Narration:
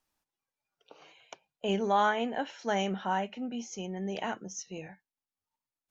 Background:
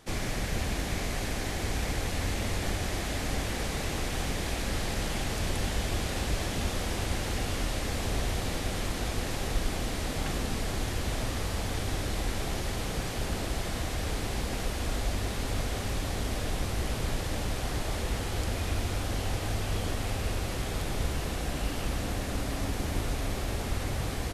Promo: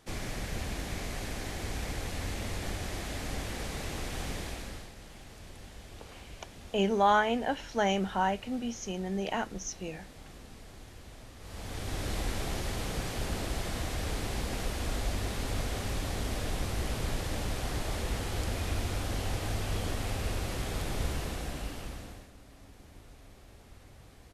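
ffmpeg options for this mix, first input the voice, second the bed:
-filter_complex "[0:a]adelay=5100,volume=2dB[a];[1:a]volume=11dB,afade=t=out:st=4.35:d=0.57:silence=0.223872,afade=t=in:st=11.39:d=0.72:silence=0.158489,afade=t=out:st=21.11:d=1.2:silence=0.1[b];[a][b]amix=inputs=2:normalize=0"

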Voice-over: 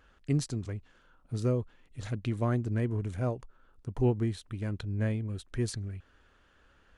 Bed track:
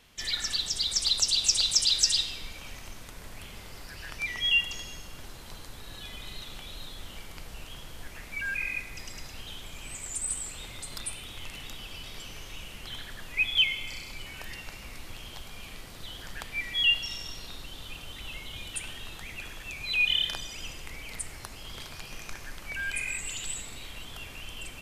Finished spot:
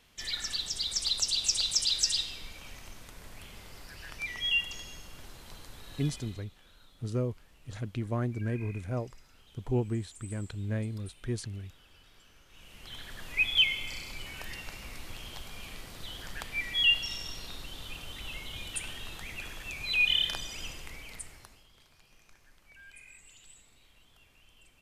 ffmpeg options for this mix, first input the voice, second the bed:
-filter_complex "[0:a]adelay=5700,volume=-2.5dB[a];[1:a]volume=14dB,afade=t=out:st=6.05:d=0.41:silence=0.188365,afade=t=in:st=12.48:d=0.83:silence=0.125893,afade=t=out:st=20.61:d=1.07:silence=0.105925[b];[a][b]amix=inputs=2:normalize=0"

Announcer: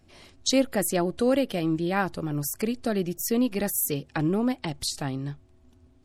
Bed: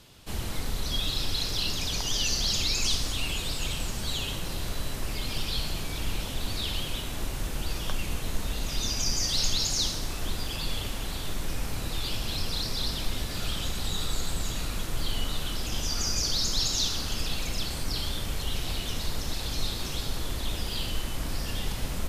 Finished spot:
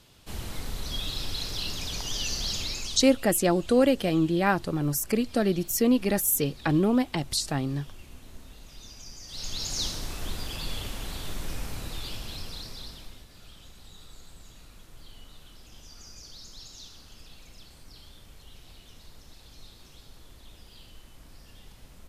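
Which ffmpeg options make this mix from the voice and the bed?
-filter_complex "[0:a]adelay=2500,volume=2dB[a];[1:a]volume=11dB,afade=t=out:st=2.5:d=0.66:silence=0.211349,afade=t=in:st=9.26:d=0.58:silence=0.188365,afade=t=out:st=11.52:d=1.74:silence=0.149624[b];[a][b]amix=inputs=2:normalize=0"

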